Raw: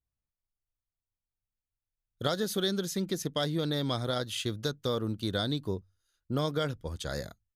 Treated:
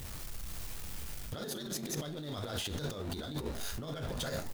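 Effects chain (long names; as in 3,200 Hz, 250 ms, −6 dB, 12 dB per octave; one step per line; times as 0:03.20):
converter with a step at zero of −35 dBFS
echo with shifted repeats 109 ms, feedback 60%, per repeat +110 Hz, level −18.5 dB
four-comb reverb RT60 0.32 s, combs from 27 ms, DRR 5.5 dB
compressor whose output falls as the input rises −34 dBFS, ratio −1
time stretch by overlap-add 0.6×, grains 21 ms
level −3 dB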